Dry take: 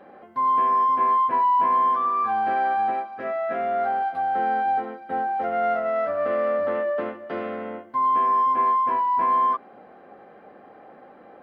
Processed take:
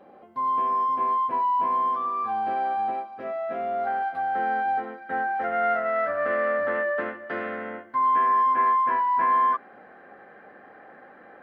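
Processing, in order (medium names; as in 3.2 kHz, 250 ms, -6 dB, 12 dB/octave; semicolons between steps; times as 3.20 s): peaking EQ 1.7 kHz -6 dB 0.67 oct, from 3.87 s +5.5 dB, from 4.98 s +12 dB; trim -3 dB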